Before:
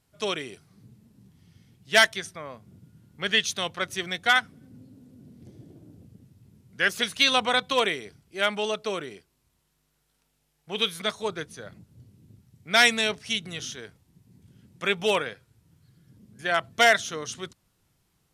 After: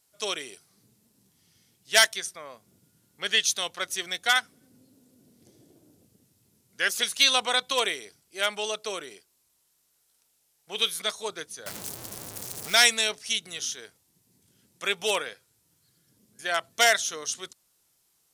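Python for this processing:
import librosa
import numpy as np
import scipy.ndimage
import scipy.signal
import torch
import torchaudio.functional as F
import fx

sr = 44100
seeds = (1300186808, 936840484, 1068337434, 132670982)

y = fx.zero_step(x, sr, step_db=-29.5, at=(11.66, 12.75))
y = fx.bass_treble(y, sr, bass_db=-13, treble_db=11)
y = y * 10.0 ** (-3.0 / 20.0)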